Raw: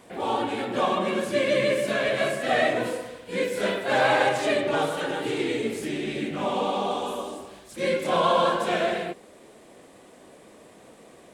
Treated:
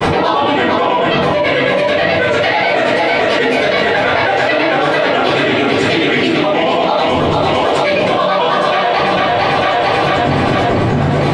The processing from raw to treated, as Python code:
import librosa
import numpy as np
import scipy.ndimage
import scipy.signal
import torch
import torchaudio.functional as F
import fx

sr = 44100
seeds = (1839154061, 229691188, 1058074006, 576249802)

p1 = fx.dmg_wind(x, sr, seeds[0], corner_hz=350.0, level_db=-36.0)
p2 = scipy.signal.sosfilt(scipy.signal.butter(2, 100.0, 'highpass', fs=sr, output='sos'), p1)
p3 = fx.tilt_shelf(p2, sr, db=-6.0, hz=970.0)
p4 = fx.notch(p3, sr, hz=6800.0, q=9.3)
p5 = p4 + 0.34 * np.pad(p4, (int(7.0 * sr / 1000.0), 0))[:len(p4)]
p6 = fx.rider(p5, sr, range_db=10, speed_s=0.5)
p7 = p5 + (p6 * librosa.db_to_amplitude(2.0))
p8 = fx.granulator(p7, sr, seeds[1], grain_ms=100.0, per_s=9.2, spray_ms=11.0, spread_st=3)
p9 = fx.air_absorb(p8, sr, metres=140.0)
p10 = p9 + fx.echo_split(p9, sr, split_hz=360.0, low_ms=95, high_ms=450, feedback_pct=52, wet_db=-5.0, dry=0)
p11 = fx.room_shoebox(p10, sr, seeds[2], volume_m3=220.0, walls='furnished', distance_m=4.9)
p12 = fx.env_flatten(p11, sr, amount_pct=100)
y = p12 * librosa.db_to_amplitude(-8.0)